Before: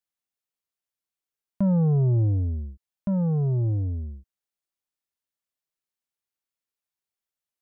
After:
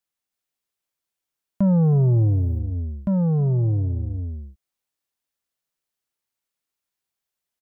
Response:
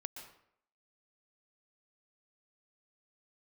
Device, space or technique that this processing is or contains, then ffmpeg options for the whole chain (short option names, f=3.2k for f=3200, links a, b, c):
ducked delay: -filter_complex "[0:a]asplit=3[a][b][c];[b]adelay=318,volume=-3dB[d];[c]apad=whole_len=349646[e];[d][e]sidechaincompress=threshold=-38dB:ratio=8:attack=16:release=152[f];[a][f]amix=inputs=2:normalize=0,asplit=3[g][h][i];[g]afade=t=out:st=1.81:d=0.02[j];[h]aemphasis=mode=production:type=75kf,afade=t=in:st=1.81:d=0.02,afade=t=out:st=2.58:d=0.02[k];[i]afade=t=in:st=2.58:d=0.02[l];[j][k][l]amix=inputs=3:normalize=0,volume=3.5dB"